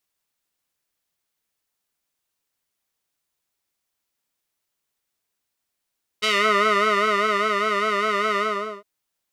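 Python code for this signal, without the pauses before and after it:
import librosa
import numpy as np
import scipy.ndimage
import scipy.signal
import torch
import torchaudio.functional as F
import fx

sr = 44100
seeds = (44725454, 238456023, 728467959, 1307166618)

y = fx.sub_patch_vibrato(sr, seeds[0], note=68, wave='square', wave2='saw', interval_st=7, detune_cents=28, level2_db=-6.0, sub_db=-2, noise_db=-30.0, kind='bandpass', cutoff_hz=850.0, q=1.4, env_oct=2.0, env_decay_s=0.27, env_sustain_pct=40, attack_ms=17.0, decay_s=1.32, sustain_db=-4.5, release_s=0.45, note_s=2.16, lfo_hz=5.0, vibrato_cents=79)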